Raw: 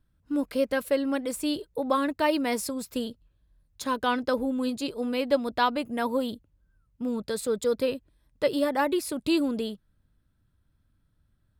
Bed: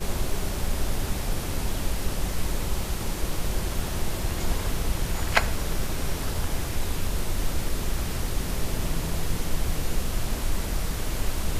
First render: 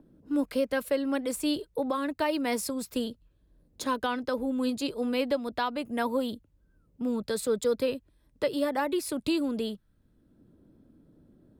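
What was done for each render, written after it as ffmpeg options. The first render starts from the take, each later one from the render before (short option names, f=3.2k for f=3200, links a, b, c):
-filter_complex "[0:a]acrossover=split=240|480|7700[a][b][c][d];[b]acompressor=mode=upward:threshold=-37dB:ratio=2.5[e];[a][e][c][d]amix=inputs=4:normalize=0,alimiter=limit=-18dB:level=0:latency=1:release=355"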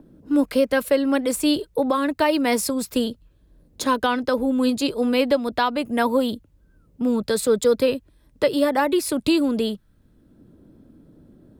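-af "volume=8.5dB"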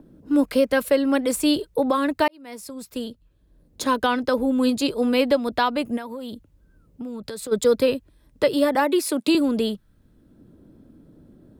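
-filter_complex "[0:a]asplit=3[a][b][c];[a]afade=t=out:st=5.96:d=0.02[d];[b]acompressor=threshold=-30dB:ratio=8:attack=3.2:release=140:knee=1:detection=peak,afade=t=in:st=5.96:d=0.02,afade=t=out:st=7.51:d=0.02[e];[c]afade=t=in:st=7.51:d=0.02[f];[d][e][f]amix=inputs=3:normalize=0,asettb=1/sr,asplit=3[g][h][i];[g]atrim=end=8.754[j];[h]atrim=start=8.75:end=9.35,asetpts=PTS-STARTPTS,afade=t=in:d=0.004:c=qsin,afade=t=out:st=0.596:d=0.004:c=qsin,highpass=f=210:w=0.5412,highpass=f=210:w=1.3066[k];[i]atrim=start=9.346[l];[j][k]acrossfade=d=0.004:c1=hsin:c2=qsin[m];[m][l]acrossfade=d=0.004:c1=qsin:c2=hsin,asplit=2[n][o];[n]atrim=end=2.28,asetpts=PTS-STARTPTS,afade=t=out:st=2.276:d=0.004:c=hsin[p];[o]atrim=start=2.28,asetpts=PTS-STARTPTS,afade=t=in:d=1.79[q];[p][q]concat=n=2:v=0:a=1"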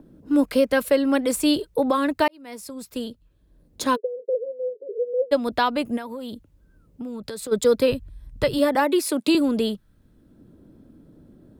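-filter_complex "[0:a]asplit=3[a][b][c];[a]afade=t=out:st=3.95:d=0.02[d];[b]asuperpass=centerf=460:order=8:qfactor=3.1,afade=t=in:st=3.95:d=0.02,afade=t=out:st=5.31:d=0.02[e];[c]afade=t=in:st=5.31:d=0.02[f];[d][e][f]amix=inputs=3:normalize=0,asplit=3[g][h][i];[g]afade=t=out:st=7.91:d=0.02[j];[h]asubboost=boost=8:cutoff=120,afade=t=in:st=7.91:d=0.02,afade=t=out:st=8.58:d=0.02[k];[i]afade=t=in:st=8.58:d=0.02[l];[j][k][l]amix=inputs=3:normalize=0"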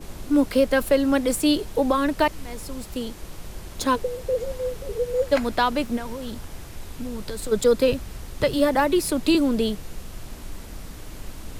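-filter_complex "[1:a]volume=-10dB[a];[0:a][a]amix=inputs=2:normalize=0"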